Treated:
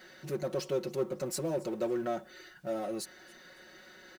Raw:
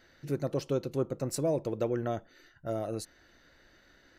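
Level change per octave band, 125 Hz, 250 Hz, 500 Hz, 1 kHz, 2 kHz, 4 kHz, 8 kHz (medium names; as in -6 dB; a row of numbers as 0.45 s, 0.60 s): -8.0 dB, -2.0 dB, -1.0 dB, -0.5 dB, +3.0 dB, +2.5 dB, +0.5 dB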